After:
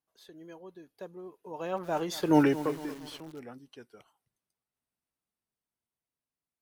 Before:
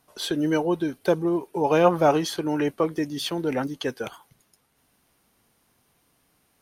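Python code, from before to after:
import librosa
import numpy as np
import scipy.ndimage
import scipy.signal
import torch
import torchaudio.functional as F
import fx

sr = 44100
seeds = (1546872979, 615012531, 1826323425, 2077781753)

y = fx.doppler_pass(x, sr, speed_mps=22, closest_m=1.3, pass_at_s=2.37)
y = fx.echo_crushed(y, sr, ms=230, feedback_pct=55, bits=7, wet_db=-14.0)
y = y * librosa.db_to_amplitude(5.5)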